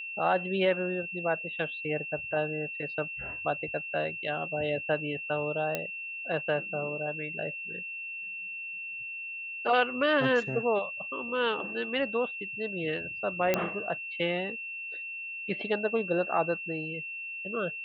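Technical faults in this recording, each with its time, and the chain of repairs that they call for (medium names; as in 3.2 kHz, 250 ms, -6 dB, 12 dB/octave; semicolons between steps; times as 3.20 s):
whine 2.7 kHz -36 dBFS
5.75 s: pop -15 dBFS
13.54 s: pop -11 dBFS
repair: de-click; band-stop 2.7 kHz, Q 30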